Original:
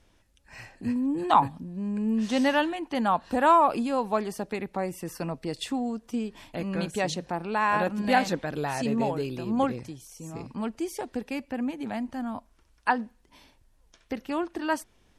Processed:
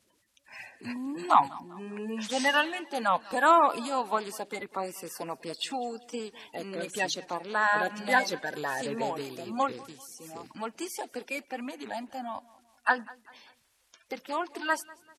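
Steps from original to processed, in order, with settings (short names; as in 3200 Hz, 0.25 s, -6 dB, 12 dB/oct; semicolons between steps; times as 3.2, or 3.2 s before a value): bin magnitudes rounded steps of 30 dB; HPF 850 Hz 6 dB/oct; feedback echo 0.196 s, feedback 42%, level -22 dB; gain +2.5 dB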